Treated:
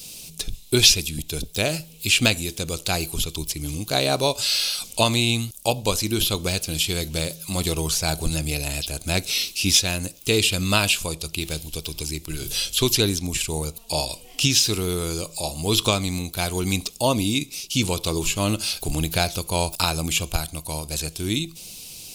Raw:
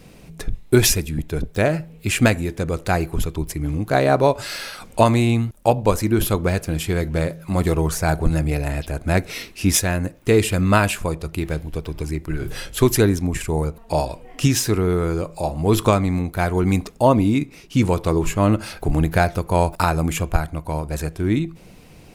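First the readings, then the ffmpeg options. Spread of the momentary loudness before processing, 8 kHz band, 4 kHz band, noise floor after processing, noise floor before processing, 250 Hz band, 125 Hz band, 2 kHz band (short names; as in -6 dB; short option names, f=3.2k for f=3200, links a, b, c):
10 LU, +4.0 dB, +9.5 dB, -45 dBFS, -45 dBFS, -6.5 dB, -6.5 dB, -0.5 dB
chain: -filter_complex "[0:a]aexciter=amount=15.8:drive=3.6:freq=2.8k,acrossover=split=3900[a][b];[b]acompressor=threshold=-21dB:ratio=4:attack=1:release=60[c];[a][c]amix=inputs=2:normalize=0,volume=-6.5dB"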